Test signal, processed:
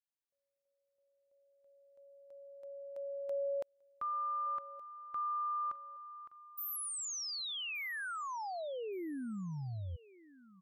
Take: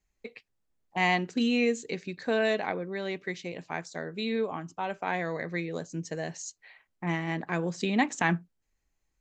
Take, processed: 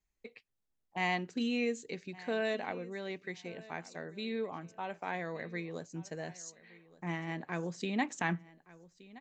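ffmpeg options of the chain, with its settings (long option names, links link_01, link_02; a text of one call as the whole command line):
ffmpeg -i in.wav -af "aecho=1:1:1171|2342:0.1|0.023,volume=-7dB" out.wav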